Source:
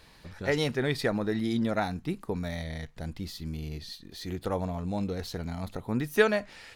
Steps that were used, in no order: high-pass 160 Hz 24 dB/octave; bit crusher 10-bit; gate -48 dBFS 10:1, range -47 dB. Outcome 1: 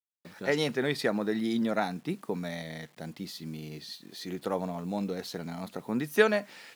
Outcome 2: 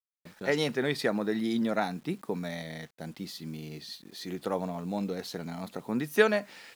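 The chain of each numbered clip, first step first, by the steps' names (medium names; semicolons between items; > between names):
gate > bit crusher > high-pass; high-pass > gate > bit crusher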